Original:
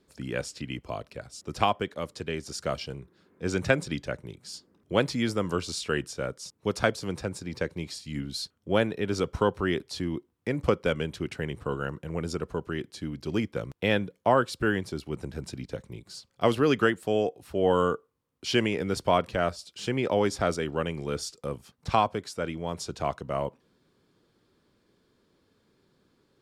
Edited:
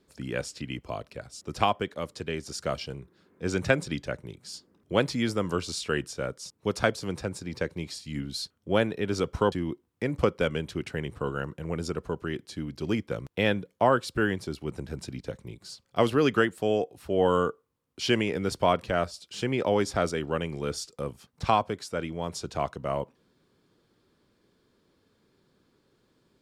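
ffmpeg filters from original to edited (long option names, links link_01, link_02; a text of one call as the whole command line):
ffmpeg -i in.wav -filter_complex "[0:a]asplit=2[link_01][link_02];[link_01]atrim=end=9.522[link_03];[link_02]atrim=start=9.968[link_04];[link_03][link_04]acrossfade=duration=0.004:curve1=hsin:curve2=hsin" out.wav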